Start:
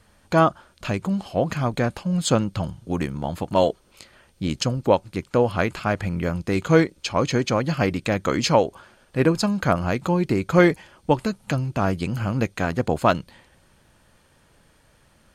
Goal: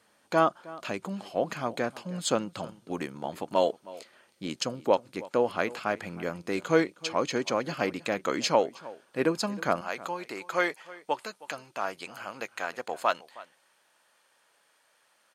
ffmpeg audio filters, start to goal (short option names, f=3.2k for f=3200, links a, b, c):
-filter_complex "[0:a]asetnsamples=n=441:p=0,asendcmd='9.81 highpass f 680',highpass=280,asplit=2[a][b];[b]adelay=314.9,volume=-19dB,highshelf=f=4k:g=-7.08[c];[a][c]amix=inputs=2:normalize=0,volume=-5dB"